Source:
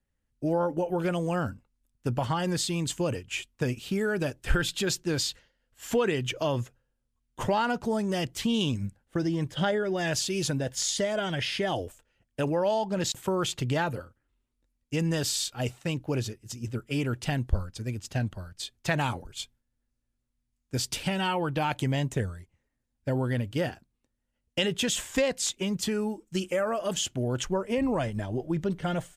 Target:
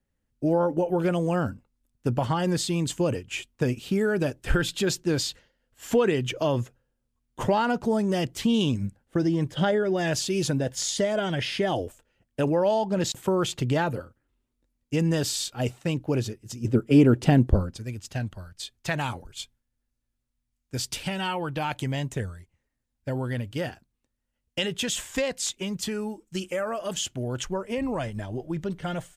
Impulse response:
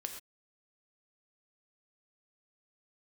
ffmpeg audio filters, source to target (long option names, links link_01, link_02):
-af "asetnsamples=nb_out_samples=441:pad=0,asendcmd='16.65 equalizer g 14.5;17.76 equalizer g -2',equalizer=frequency=300:width_type=o:width=3:gain=4.5"